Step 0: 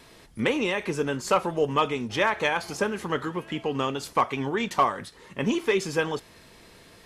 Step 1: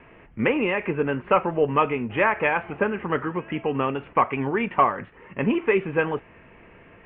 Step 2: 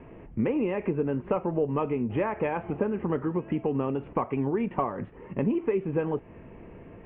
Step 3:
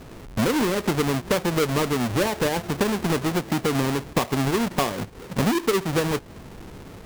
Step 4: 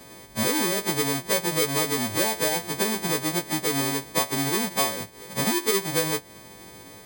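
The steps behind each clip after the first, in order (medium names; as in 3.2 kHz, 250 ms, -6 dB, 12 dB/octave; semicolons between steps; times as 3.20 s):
steep low-pass 2.8 kHz 72 dB/octave; trim +3 dB
FFT filter 330 Hz 0 dB, 940 Hz -7 dB, 1.5 kHz -14 dB; compression 3:1, threshold -32 dBFS, peak gain reduction 11 dB; trim +6 dB
square wave that keeps the level; trim +1 dB
partials quantised in pitch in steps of 2 st; comb of notches 1.4 kHz; trim -2.5 dB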